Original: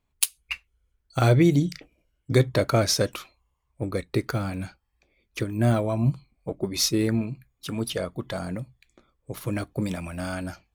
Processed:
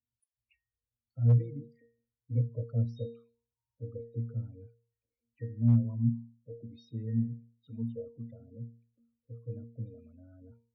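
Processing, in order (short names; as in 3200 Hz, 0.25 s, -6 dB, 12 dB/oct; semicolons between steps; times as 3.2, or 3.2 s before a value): loudest bins only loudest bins 16; octave resonator A#, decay 0.43 s; hard clip -18.5 dBFS, distortion -34 dB; gain +2 dB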